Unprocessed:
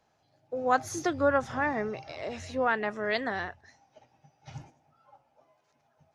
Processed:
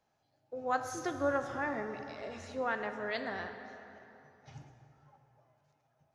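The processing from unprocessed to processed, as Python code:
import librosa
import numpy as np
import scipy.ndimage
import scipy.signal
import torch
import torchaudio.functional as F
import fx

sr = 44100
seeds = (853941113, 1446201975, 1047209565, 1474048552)

y = fx.rev_plate(x, sr, seeds[0], rt60_s=3.3, hf_ratio=0.6, predelay_ms=0, drr_db=6.5)
y = y * 10.0 ** (-7.5 / 20.0)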